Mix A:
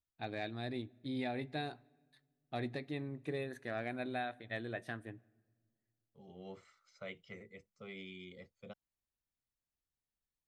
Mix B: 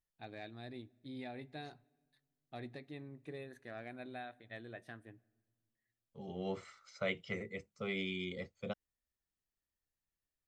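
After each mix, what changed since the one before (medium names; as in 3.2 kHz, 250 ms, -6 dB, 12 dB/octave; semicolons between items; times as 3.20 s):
first voice -7.5 dB; second voice +10.0 dB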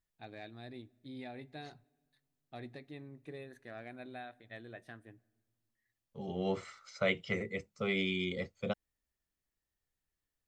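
second voice +5.5 dB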